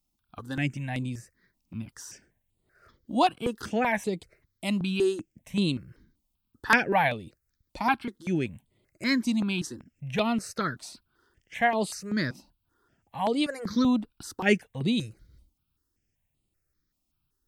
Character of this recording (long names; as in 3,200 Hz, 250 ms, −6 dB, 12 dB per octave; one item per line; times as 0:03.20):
notches that jump at a steady rate 5.2 Hz 440–5,700 Hz